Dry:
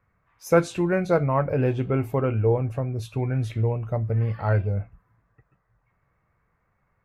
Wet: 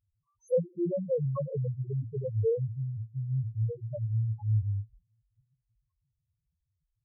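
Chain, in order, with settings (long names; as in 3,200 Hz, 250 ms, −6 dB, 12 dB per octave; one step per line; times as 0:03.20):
inverse Chebyshev band-stop filter 2,300–4,700 Hz
mains-hum notches 60/120/180/240/300/360 Hz
spectral peaks only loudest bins 1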